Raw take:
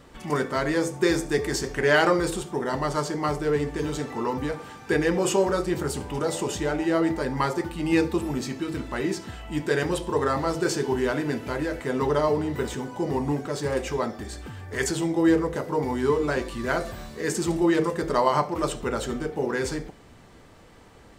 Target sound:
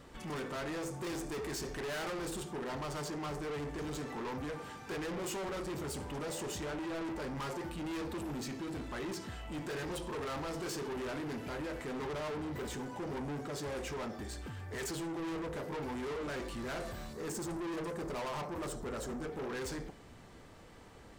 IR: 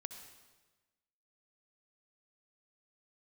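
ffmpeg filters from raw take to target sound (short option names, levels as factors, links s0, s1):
-filter_complex "[0:a]asettb=1/sr,asplit=3[s0][s1][s2];[s0]atrim=end=17.134[s3];[s1]atrim=start=17.13:end=19.23,asetpts=PTS-STARTPTS,afade=t=in:d=0.004:c=qsin,afade=t=out:st=2.096:d=0.004:c=qsin,equalizer=f=2700:t=o:w=0.85:g=-14[s4];[s2]atrim=start=19.226[s5];[s3][s4]acrossfade=d=0.004:c1=hsin:c2=qsin[s6];[s6][s5]acrossfade=d=0.004:c1=qsin:c2=hsin,asoftclip=type=tanh:threshold=0.0224,volume=0.631"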